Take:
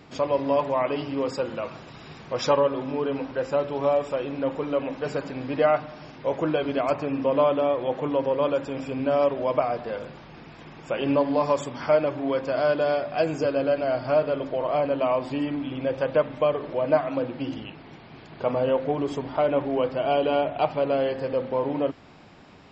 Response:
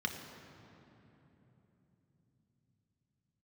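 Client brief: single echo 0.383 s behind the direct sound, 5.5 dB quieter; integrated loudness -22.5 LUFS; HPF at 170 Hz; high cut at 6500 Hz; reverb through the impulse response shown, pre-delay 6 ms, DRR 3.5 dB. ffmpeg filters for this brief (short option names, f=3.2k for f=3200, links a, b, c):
-filter_complex "[0:a]highpass=170,lowpass=6.5k,aecho=1:1:383:0.531,asplit=2[a][b];[1:a]atrim=start_sample=2205,adelay=6[c];[b][c]afir=irnorm=-1:irlink=0,volume=-7.5dB[d];[a][d]amix=inputs=2:normalize=0,volume=1dB"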